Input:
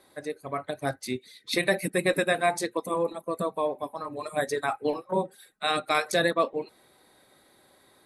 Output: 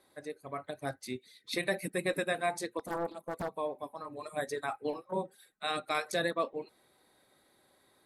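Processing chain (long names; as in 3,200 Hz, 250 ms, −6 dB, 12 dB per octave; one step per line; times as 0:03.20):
0:02.79–0:03.49: highs frequency-modulated by the lows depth 0.89 ms
level −7.5 dB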